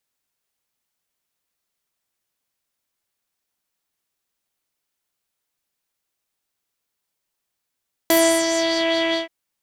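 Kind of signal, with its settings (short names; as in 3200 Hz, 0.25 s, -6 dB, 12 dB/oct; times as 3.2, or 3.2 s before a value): synth patch with filter wobble E5, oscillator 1 square, sub -2 dB, noise -5.5 dB, filter lowpass, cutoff 3100 Hz, Q 3.2, filter envelope 2 oct, filter decay 0.77 s, filter sustain 5%, attack 1.4 ms, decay 0.36 s, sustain -7 dB, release 0.14 s, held 1.04 s, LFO 4.9 Hz, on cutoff 0.3 oct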